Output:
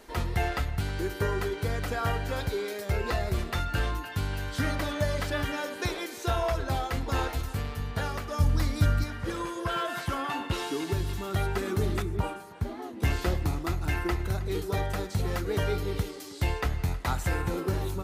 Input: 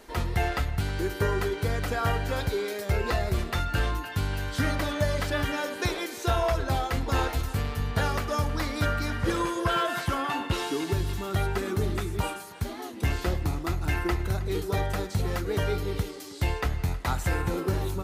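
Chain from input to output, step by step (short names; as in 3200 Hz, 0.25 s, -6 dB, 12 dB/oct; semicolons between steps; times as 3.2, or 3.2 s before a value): 8.4–9.04 tone controls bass +12 dB, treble +6 dB; vocal rider 2 s; 12.02–13.02 high shelf 2100 Hz -12 dB; gain -3 dB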